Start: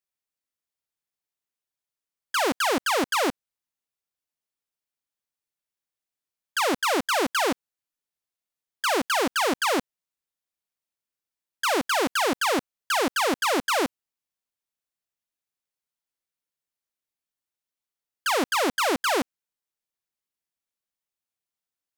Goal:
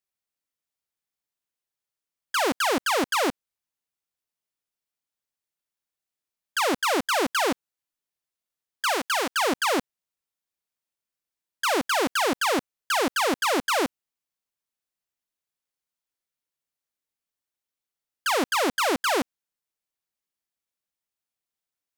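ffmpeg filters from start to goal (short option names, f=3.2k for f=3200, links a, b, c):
-filter_complex "[0:a]asettb=1/sr,asplit=3[a][b][c];[a]atrim=end=8.924[d];[b]atrim=start=8.92:end=9.36,asetpts=PTS-STARTPTS,afade=t=in:d=0.004:c=qsin,afade=t=out:st=0.436:d=0.004:c=qsin,lowshelf=f=410:g=-9[e];[c]atrim=start=9.356[f];[d][e]acrossfade=d=0.004:c1=hsin:c2=qsin[g];[g][f]acrossfade=d=0.004:c1=qsin:c2=hsin"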